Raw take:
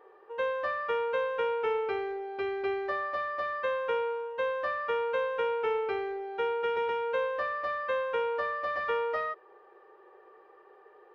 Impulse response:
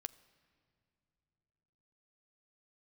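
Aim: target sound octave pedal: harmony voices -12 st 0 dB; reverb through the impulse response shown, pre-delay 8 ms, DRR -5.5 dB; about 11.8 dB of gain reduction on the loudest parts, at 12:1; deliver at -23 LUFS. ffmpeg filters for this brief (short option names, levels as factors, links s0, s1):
-filter_complex "[0:a]acompressor=threshold=0.0126:ratio=12,asplit=2[s0][s1];[1:a]atrim=start_sample=2205,adelay=8[s2];[s1][s2]afir=irnorm=-1:irlink=0,volume=2.99[s3];[s0][s3]amix=inputs=2:normalize=0,asplit=2[s4][s5];[s5]asetrate=22050,aresample=44100,atempo=2,volume=1[s6];[s4][s6]amix=inputs=2:normalize=0,volume=2.66"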